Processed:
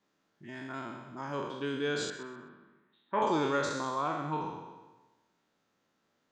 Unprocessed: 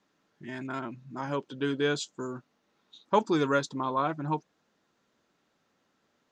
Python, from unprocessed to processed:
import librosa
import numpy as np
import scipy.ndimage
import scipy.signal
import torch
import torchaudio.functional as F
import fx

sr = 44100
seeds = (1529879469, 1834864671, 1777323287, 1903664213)

y = fx.spec_trails(x, sr, decay_s=1.19)
y = fx.cabinet(y, sr, low_hz=200.0, low_slope=12, high_hz=2400.0, hz=(290.0, 490.0, 740.0, 1200.0, 1800.0), db=(-5, -8, -5, -4, 9), at=(2.1, 3.22))
y = fx.echo_feedback(y, sr, ms=128, feedback_pct=23, wet_db=-14.0)
y = F.gain(torch.from_numpy(y), -6.5).numpy()